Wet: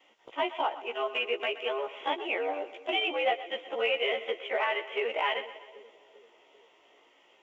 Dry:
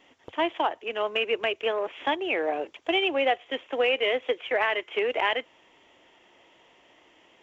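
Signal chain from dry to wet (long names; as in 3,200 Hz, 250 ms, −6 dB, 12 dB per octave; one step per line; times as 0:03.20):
every overlapping window played backwards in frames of 34 ms
bass and treble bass −15 dB, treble −2 dB
notch filter 1,700 Hz, Q 8.6
echo with a time of its own for lows and highs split 490 Hz, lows 392 ms, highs 124 ms, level −14.5 dB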